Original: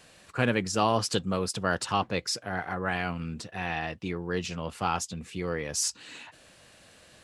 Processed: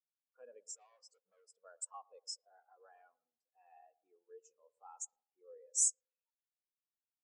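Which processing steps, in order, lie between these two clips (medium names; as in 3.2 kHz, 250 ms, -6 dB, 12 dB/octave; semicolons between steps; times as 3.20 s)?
graphic EQ 125/250/500/1000/2000/4000/8000 Hz -9/+4/+10/+5/-6/-9/+7 dB; in parallel at 0 dB: peak limiter -16 dBFS, peak gain reduction 9.5 dB; 0.65–1.52 s: on the sum: overload inside the chain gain 20 dB; level-controlled noise filter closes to 2.5 kHz, open at -14 dBFS; differentiator; on a send: tape echo 114 ms, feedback 71%, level -8.5 dB, low-pass 1.5 kHz; on the sum: spectral contrast expander 2.5:1; trim -8 dB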